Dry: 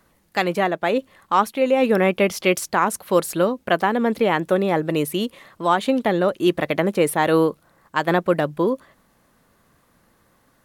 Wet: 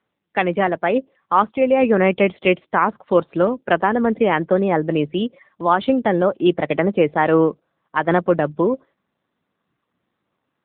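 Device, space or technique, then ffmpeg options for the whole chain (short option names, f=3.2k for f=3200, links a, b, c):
mobile call with aggressive noise cancelling: -filter_complex "[0:a]asettb=1/sr,asplit=3[a][b][c];[a]atrim=end=6.274[d];[b]atrim=start=6.27:end=6.94,asetpts=PTS-STARTPTS,afade=t=in:d=0.004:c=qsin,afade=t=out:st=0.666:d=0.004:c=qsin,bandreject=f=1.7k:w=14[e];[c]atrim=start=6.936[f];[d][e]acrossfade=d=0.004:c1=hsin:c2=qsin[g];[g][f]acrossfade=d=0.004:c1=qsin:c2=hsin,highpass=f=110:w=0.5412,highpass=f=110:w=1.3066,afftdn=nr=15:nf=-37,volume=2.5dB" -ar 8000 -c:a libopencore_amrnb -b:a 7950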